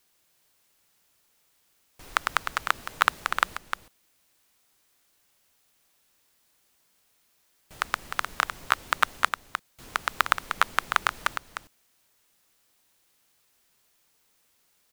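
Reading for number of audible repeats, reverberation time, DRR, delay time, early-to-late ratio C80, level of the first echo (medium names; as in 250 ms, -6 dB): 1, no reverb, no reverb, 305 ms, no reverb, -7.5 dB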